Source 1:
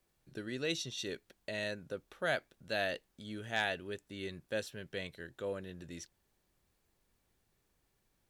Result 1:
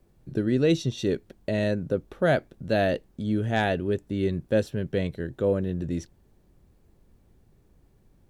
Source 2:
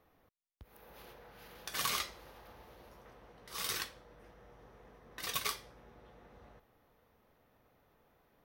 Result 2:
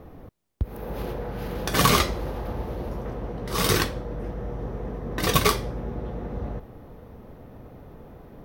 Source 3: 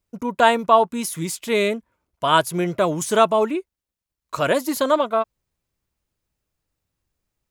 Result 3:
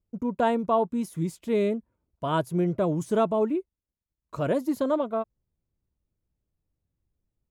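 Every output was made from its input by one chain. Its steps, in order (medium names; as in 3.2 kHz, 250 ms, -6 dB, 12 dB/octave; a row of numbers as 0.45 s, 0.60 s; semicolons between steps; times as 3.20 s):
tilt shelf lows +9.5 dB, about 720 Hz; normalise loudness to -27 LUFS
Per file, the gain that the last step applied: +11.0 dB, +20.5 dB, -8.5 dB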